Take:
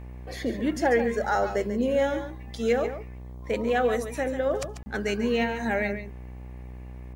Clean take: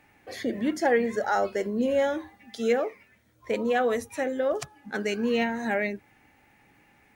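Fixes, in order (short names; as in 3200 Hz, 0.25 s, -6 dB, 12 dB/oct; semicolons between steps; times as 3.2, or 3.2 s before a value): de-hum 62.2 Hz, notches 19; interpolate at 4.83, 30 ms; inverse comb 0.141 s -10 dB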